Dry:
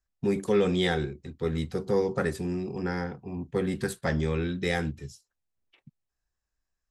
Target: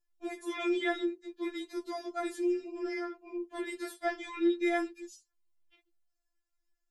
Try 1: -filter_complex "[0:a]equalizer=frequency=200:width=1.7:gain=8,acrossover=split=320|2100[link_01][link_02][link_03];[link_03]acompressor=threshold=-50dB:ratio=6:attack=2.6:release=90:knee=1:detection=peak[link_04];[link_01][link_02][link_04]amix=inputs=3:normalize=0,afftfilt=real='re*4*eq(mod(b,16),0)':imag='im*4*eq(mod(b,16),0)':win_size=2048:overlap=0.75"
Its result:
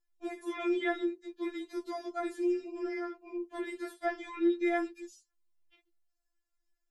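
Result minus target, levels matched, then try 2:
downward compressor: peak gain reduction +8 dB
-filter_complex "[0:a]equalizer=frequency=200:width=1.7:gain=8,acrossover=split=320|2100[link_01][link_02][link_03];[link_03]acompressor=threshold=-40.5dB:ratio=6:attack=2.6:release=90:knee=1:detection=peak[link_04];[link_01][link_02][link_04]amix=inputs=3:normalize=0,afftfilt=real='re*4*eq(mod(b,16),0)':imag='im*4*eq(mod(b,16),0)':win_size=2048:overlap=0.75"

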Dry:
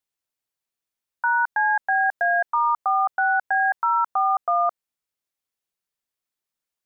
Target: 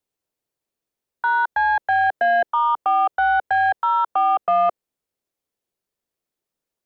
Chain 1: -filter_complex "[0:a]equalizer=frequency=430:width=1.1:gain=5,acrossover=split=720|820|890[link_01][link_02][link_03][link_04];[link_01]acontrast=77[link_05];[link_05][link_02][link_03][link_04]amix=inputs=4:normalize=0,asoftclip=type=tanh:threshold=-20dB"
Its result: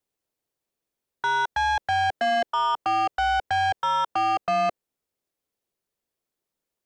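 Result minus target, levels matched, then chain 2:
soft clipping: distortion +13 dB
-filter_complex "[0:a]equalizer=frequency=430:width=1.1:gain=5,acrossover=split=720|820|890[link_01][link_02][link_03][link_04];[link_01]acontrast=77[link_05];[link_05][link_02][link_03][link_04]amix=inputs=4:normalize=0,asoftclip=type=tanh:threshold=-9.5dB"

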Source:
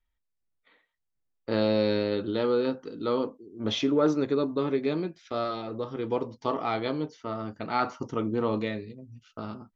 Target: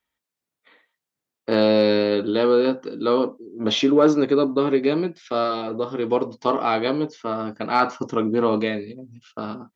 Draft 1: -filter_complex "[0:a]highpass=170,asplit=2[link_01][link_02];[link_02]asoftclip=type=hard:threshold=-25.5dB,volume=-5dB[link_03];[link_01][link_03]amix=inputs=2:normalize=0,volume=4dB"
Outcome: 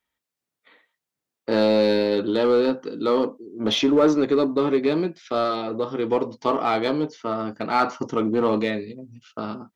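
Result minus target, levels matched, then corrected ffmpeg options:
hard clipping: distortion +22 dB
-filter_complex "[0:a]highpass=170,asplit=2[link_01][link_02];[link_02]asoftclip=type=hard:threshold=-15.5dB,volume=-5dB[link_03];[link_01][link_03]amix=inputs=2:normalize=0,volume=4dB"

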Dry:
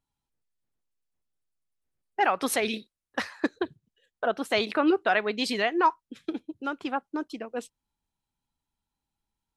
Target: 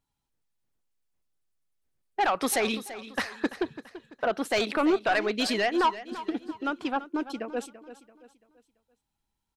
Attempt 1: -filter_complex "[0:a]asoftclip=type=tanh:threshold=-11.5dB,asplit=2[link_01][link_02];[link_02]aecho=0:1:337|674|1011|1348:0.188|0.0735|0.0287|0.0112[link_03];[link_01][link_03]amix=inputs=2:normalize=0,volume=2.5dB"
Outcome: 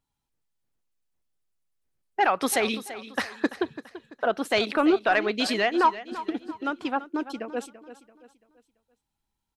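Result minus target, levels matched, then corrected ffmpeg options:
soft clipping: distortion −12 dB
-filter_complex "[0:a]asoftclip=type=tanh:threshold=-20.5dB,asplit=2[link_01][link_02];[link_02]aecho=0:1:337|674|1011|1348:0.188|0.0735|0.0287|0.0112[link_03];[link_01][link_03]amix=inputs=2:normalize=0,volume=2.5dB"

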